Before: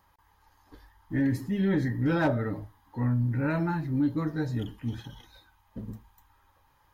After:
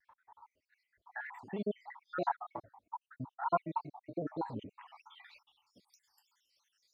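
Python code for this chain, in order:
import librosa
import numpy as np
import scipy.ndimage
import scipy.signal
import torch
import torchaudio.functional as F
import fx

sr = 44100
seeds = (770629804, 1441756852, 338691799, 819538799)

y = fx.spec_dropout(x, sr, seeds[0], share_pct=70)
y = fx.filter_sweep_bandpass(y, sr, from_hz=850.0, to_hz=5300.0, start_s=4.75, end_s=5.8, q=3.2)
y = fx.vibrato_shape(y, sr, shape='square', rate_hz=3.2, depth_cents=100.0)
y = y * librosa.db_to_amplitude(12.0)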